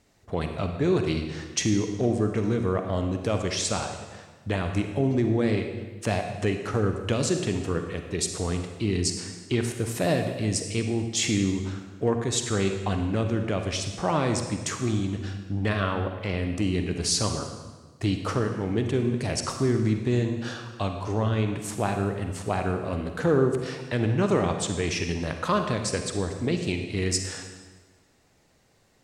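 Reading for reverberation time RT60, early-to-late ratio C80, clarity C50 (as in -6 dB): 1.4 s, 7.5 dB, 6.0 dB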